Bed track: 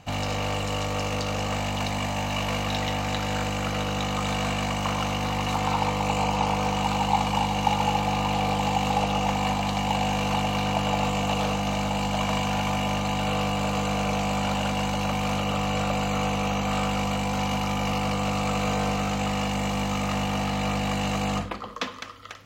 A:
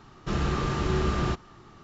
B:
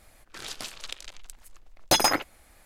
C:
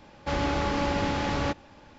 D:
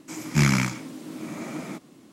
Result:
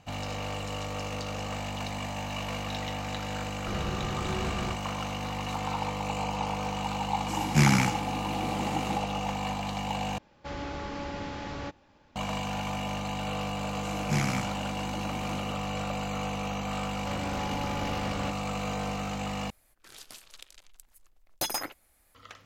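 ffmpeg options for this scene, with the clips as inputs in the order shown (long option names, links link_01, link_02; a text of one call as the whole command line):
ffmpeg -i bed.wav -i cue0.wav -i cue1.wav -i cue2.wav -i cue3.wav -filter_complex "[4:a]asplit=2[link_01][link_02];[3:a]asplit=2[link_03][link_04];[0:a]volume=-7dB[link_05];[link_04]alimiter=limit=-20dB:level=0:latency=1:release=225[link_06];[2:a]equalizer=frequency=14000:width_type=o:width=0.97:gain=10[link_07];[link_05]asplit=3[link_08][link_09][link_10];[link_08]atrim=end=10.184[link_11];[link_03]atrim=end=1.98,asetpts=PTS-STARTPTS,volume=-9.5dB[link_12];[link_09]atrim=start=12.156:end=19.504[link_13];[link_07]atrim=end=2.65,asetpts=PTS-STARTPTS,volume=-12dB[link_14];[link_10]atrim=start=22.146[link_15];[1:a]atrim=end=1.83,asetpts=PTS-STARTPTS,volume=-8dB,afade=type=in:duration=0.004:curve=hsin,afade=type=out:start_time=1.826:duration=0.004:curve=hsin,adelay=3400[link_16];[link_01]atrim=end=2.12,asetpts=PTS-STARTPTS,volume=-1.5dB,afade=type=in:duration=0.004:curve=hsin,afade=type=out:start_time=2.116:duration=0.004:curve=hsin,adelay=7200[link_17];[link_02]atrim=end=2.12,asetpts=PTS-STARTPTS,volume=-8.5dB,afade=type=in:duration=0.004:curve=hsin,afade=type=out:start_time=2.116:duration=0.004:curve=hsin,adelay=13750[link_18];[link_06]atrim=end=1.98,asetpts=PTS-STARTPTS,volume=-6.5dB,afade=type=in:duration=0.004:curve=hsin,afade=type=out:start_time=1.976:duration=0.004:curve=hsin,adelay=16790[link_19];[link_11][link_12]acrossfade=duration=0.004:curve1=hsin:curve2=hsin[link_20];[link_20][link_13]acrossfade=duration=0.004:curve1=hsin:curve2=hsin[link_21];[link_21][link_14]acrossfade=duration=0.004:curve1=hsin:curve2=hsin[link_22];[link_22][link_15]acrossfade=duration=0.004:curve1=hsin:curve2=hsin[link_23];[link_23][link_16][link_17][link_18][link_19]amix=inputs=5:normalize=0" out.wav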